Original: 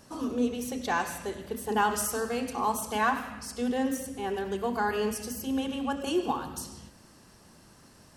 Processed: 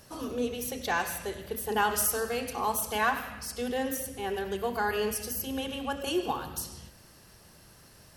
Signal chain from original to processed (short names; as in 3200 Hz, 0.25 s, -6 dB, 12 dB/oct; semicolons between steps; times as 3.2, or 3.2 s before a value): ten-band EQ 250 Hz -9 dB, 1000 Hz -5 dB, 8000 Hz -7 dB, 16000 Hz +10 dB; gain +3 dB